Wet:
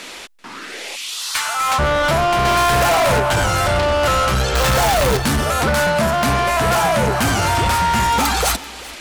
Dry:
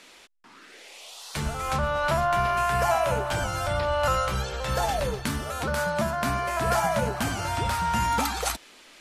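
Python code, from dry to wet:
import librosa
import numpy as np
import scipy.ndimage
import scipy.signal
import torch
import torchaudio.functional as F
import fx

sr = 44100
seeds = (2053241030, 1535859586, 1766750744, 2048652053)

p1 = fx.zero_step(x, sr, step_db=-28.5, at=(4.55, 5.17))
p2 = fx.rider(p1, sr, range_db=3, speed_s=0.5)
p3 = p1 + (p2 * librosa.db_to_amplitude(2.0))
p4 = fx.highpass(p3, sr, hz=fx.line((0.95, 1500.0), (1.78, 710.0)), slope=24, at=(0.95, 1.78), fade=0.02)
p5 = 10.0 ** (-22.0 / 20.0) * np.tanh(p4 / 10.0 ** (-22.0 / 20.0))
p6 = p5 + fx.echo_single(p5, sr, ms=388, db=-20.0, dry=0)
p7 = fx.leveller(p6, sr, passes=2, at=(2.45, 3.2))
y = p7 * librosa.db_to_amplitude(8.5)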